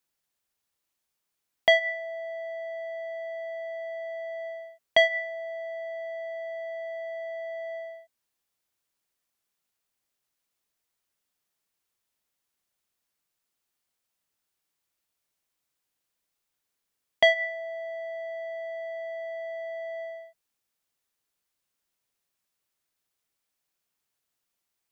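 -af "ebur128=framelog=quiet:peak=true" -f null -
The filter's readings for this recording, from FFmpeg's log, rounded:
Integrated loudness:
  I:         -30.1 LUFS
  Threshold: -40.4 LUFS
Loudness range:
  LRA:        12.1 LU
  Threshold: -52.3 LUFS
  LRA low:   -42.0 LUFS
  LRA high:  -29.9 LUFS
True peak:
  Peak:       -8.3 dBFS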